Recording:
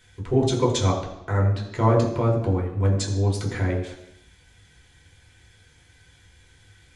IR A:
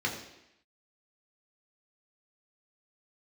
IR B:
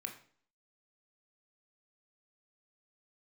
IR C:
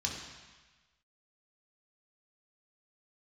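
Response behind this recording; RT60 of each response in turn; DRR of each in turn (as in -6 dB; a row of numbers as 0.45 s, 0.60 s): A; 0.85 s, 0.50 s, 1.3 s; -2.0 dB, 3.5 dB, -2.0 dB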